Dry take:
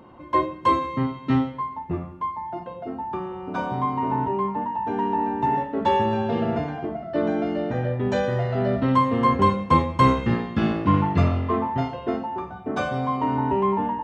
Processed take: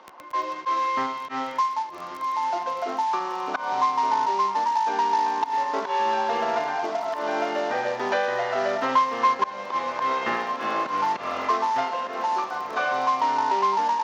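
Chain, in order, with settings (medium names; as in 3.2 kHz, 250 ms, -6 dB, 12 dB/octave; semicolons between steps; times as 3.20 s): CVSD coder 32 kbps; gate with hold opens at -30 dBFS; slow attack 255 ms; high-pass 910 Hz 12 dB/octave; treble shelf 2.8 kHz -9 dB; crackle 16 per s -47 dBFS; echo that smears into a reverb 1538 ms, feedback 54%, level -15 dB; three bands compressed up and down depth 70%; trim +8.5 dB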